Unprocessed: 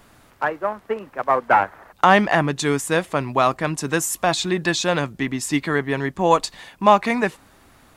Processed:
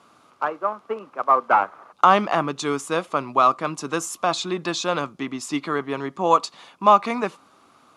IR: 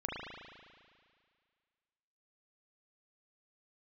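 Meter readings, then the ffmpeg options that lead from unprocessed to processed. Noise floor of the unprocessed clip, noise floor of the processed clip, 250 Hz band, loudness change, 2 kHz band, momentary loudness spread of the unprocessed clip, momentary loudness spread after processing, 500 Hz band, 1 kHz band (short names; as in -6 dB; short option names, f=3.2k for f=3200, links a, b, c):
-53 dBFS, -56 dBFS, -5.0 dB, -1.5 dB, -6.5 dB, 10 LU, 13 LU, -3.0 dB, +0.5 dB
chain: -filter_complex "[0:a]highpass=200,equalizer=f=1.2k:t=q:w=4:g=10,equalizer=f=1.8k:t=q:w=4:g=-10,equalizer=f=8.2k:t=q:w=4:g=-6,lowpass=f=9.9k:w=0.5412,lowpass=f=9.9k:w=1.3066,asplit=2[a][b];[1:a]atrim=start_sample=2205,atrim=end_sample=3969[c];[b][c]afir=irnorm=-1:irlink=0,volume=-26dB[d];[a][d]amix=inputs=2:normalize=0,volume=-3.5dB"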